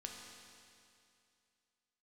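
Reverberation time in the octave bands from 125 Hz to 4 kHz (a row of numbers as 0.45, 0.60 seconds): 2.5, 2.5, 2.5, 2.5, 2.5, 2.5 seconds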